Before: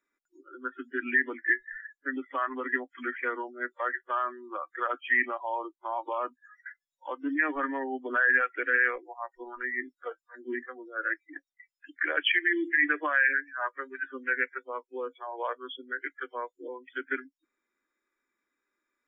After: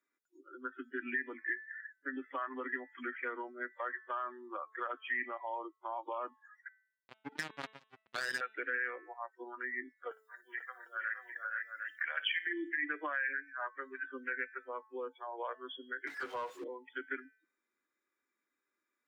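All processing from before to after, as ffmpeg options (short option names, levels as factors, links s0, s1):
-filter_complex "[0:a]asettb=1/sr,asplit=3[s0][s1][s2];[s0]atrim=end=6.684[s3];[s1]atrim=start=6.68:end=8.41,asetpts=PTS-STARTPTS,afade=t=in:d=0.004:c=qsin,afade=t=out:st=1.726:d=0.004:c=qsin,lowpass=f=1400:p=1,acrusher=bits=3:mix=0:aa=0.5[s4];[s2]atrim=start=8.406[s5];[s3][s4]acrossfade=d=0.004:c1=hsin:c2=qsin[s6];[s6][s5]acrossfade=d=0.004:c1=qsin:c2=hsin,asettb=1/sr,asplit=3[s7][s8][s9];[s7]atrim=end=10.114[s10];[s8]atrim=start=10.11:end=12.47,asetpts=PTS-STARTPTS,afade=t=in:d=0.004:c=qsin,afade=t=out:st=2.356:d=0.004:c=qsin,highpass=f=700:w=0.5412,highpass=f=700:w=1.3066,aemphasis=mode=production:type=75kf,aecho=1:1:56|462|491|750:0.178|0.501|0.631|0.355,atrim=end_sample=104076[s11];[s9]atrim=start=12.466[s12];[s10][s11]acrossfade=d=0.004:c1=hsin:c2=qsin[s13];[s13][s12]acrossfade=d=0.004:c1=qsin:c2=hsin,asettb=1/sr,asplit=3[s14][s15][s16];[s14]atrim=end=16.074[s17];[s15]atrim=start=16.07:end=16.64,asetpts=PTS-STARTPTS,afade=t=in:d=0.004:c=qsin,afade=t=out:st=0.566:d=0.004:c=qsin,aeval=exprs='val(0)+0.5*0.00501*sgn(val(0))':c=same,asplit=2[s18][s19];[s19]highpass=f=720:p=1,volume=7.08,asoftclip=type=tanh:threshold=0.0668[s20];[s18][s20]amix=inputs=2:normalize=0,lowpass=f=1900:p=1,volume=0.501[s21];[s16]atrim=start=16.636[s22];[s17][s21]acrossfade=d=0.004:c1=hsin:c2=qsin[s23];[s23][s22]acrossfade=d=0.004:c1=qsin:c2=hsin,highpass=110,bandreject=f=218.6:t=h:w=4,bandreject=f=437.2:t=h:w=4,bandreject=f=655.8:t=h:w=4,bandreject=f=874.4:t=h:w=4,bandreject=f=1093:t=h:w=4,bandreject=f=1311.6:t=h:w=4,bandreject=f=1530.2:t=h:w=4,bandreject=f=1748.8:t=h:w=4,bandreject=f=1967.4:t=h:w=4,bandreject=f=2186:t=h:w=4,bandreject=f=2404.6:t=h:w=4,bandreject=f=2623.2:t=h:w=4,bandreject=f=2841.8:t=h:w=4,bandreject=f=3060.4:t=h:w=4,bandreject=f=3279:t=h:w=4,bandreject=f=3497.6:t=h:w=4,bandreject=f=3716.2:t=h:w=4,bandreject=f=3934.8:t=h:w=4,acompressor=threshold=0.0224:ratio=2,volume=0.596"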